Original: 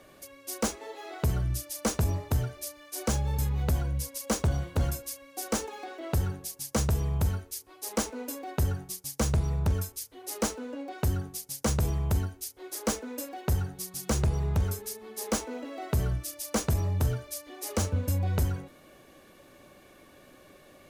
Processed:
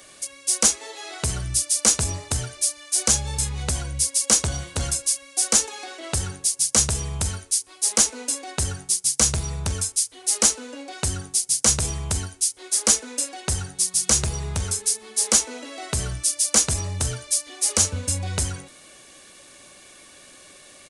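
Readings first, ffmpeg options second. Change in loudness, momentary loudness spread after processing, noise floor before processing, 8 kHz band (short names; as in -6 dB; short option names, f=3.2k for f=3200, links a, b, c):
+9.5 dB, 10 LU, -56 dBFS, +18.0 dB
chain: -af "aresample=22050,aresample=44100,crystalizer=i=9:c=0,volume=-1dB"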